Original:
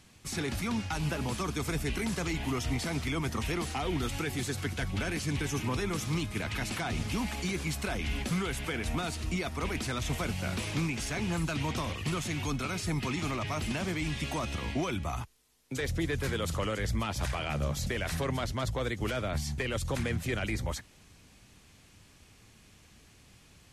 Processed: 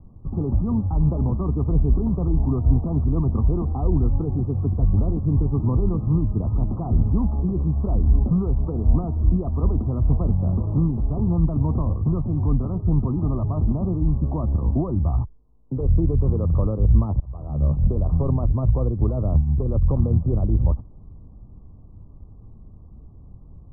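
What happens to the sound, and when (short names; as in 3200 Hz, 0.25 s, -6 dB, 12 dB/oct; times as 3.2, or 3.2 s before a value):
17.2–17.82 fade in
whole clip: steep low-pass 1200 Hz 96 dB/oct; tilt -4.5 dB/oct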